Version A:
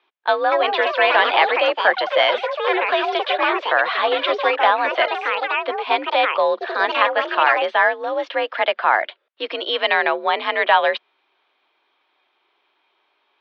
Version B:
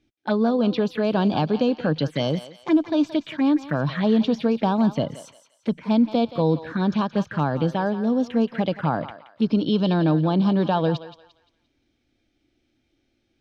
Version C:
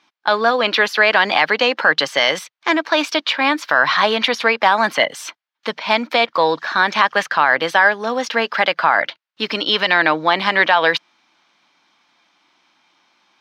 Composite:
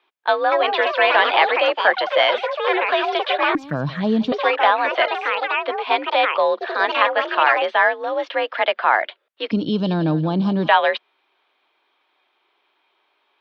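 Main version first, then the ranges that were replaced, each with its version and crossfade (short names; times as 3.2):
A
3.55–4.32 from B
9.51–10.68 from B
not used: C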